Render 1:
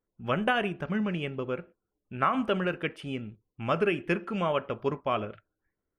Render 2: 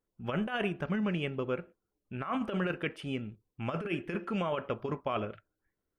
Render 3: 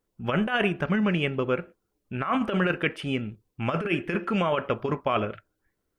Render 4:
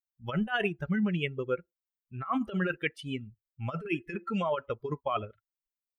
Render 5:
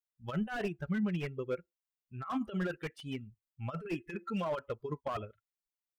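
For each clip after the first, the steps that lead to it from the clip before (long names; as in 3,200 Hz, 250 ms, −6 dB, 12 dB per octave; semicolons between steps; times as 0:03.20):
compressor whose output falls as the input rises −28 dBFS, ratio −0.5; level −2.5 dB
dynamic equaliser 1,900 Hz, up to +3 dB, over −51 dBFS, Q 1; level +7 dB
spectral dynamics exaggerated over time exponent 2; level −1.5 dB
slew-rate limiting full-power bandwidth 34 Hz; level −4 dB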